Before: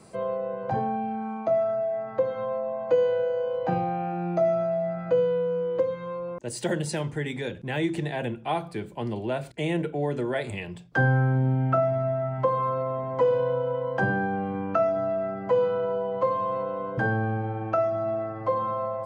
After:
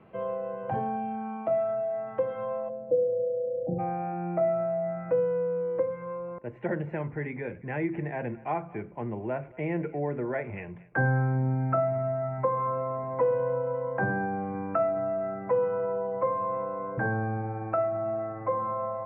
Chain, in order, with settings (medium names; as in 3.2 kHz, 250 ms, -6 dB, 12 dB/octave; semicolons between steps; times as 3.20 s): elliptic low-pass 3 kHz, stop band 50 dB, from 2.68 s 600 Hz, from 3.78 s 2.3 kHz; thinning echo 229 ms, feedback 28%, level -20.5 dB; trim -2.5 dB